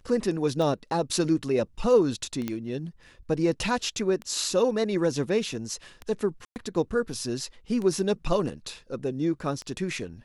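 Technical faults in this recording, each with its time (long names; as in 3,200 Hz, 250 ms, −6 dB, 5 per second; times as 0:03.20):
scratch tick 33 1/3 rpm
0:02.48: click −16 dBFS
0:06.45–0:06.56: drop-out 109 ms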